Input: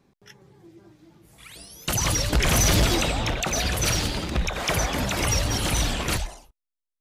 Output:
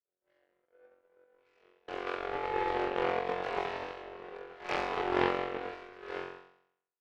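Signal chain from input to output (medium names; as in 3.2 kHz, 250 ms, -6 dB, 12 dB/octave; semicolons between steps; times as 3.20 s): 2.24–2.70 s: sorted samples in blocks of 128 samples; tilt EQ -3 dB/octave; compression 4:1, threshold -20 dBFS, peak gain reduction 12.5 dB; 3.84–4.69 s: hard clipper -27.5 dBFS, distortion -12 dB; mistuned SSB +170 Hz 210–2500 Hz; 5.65–6.10 s: static phaser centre 1.8 kHz, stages 4; flutter echo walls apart 3.8 m, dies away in 1.4 s; reverberation RT60 0.60 s, pre-delay 3 ms, DRR 2.5 dB; power-law waveshaper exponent 2; loudspeaker Doppler distortion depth 0.37 ms; trim -1.5 dB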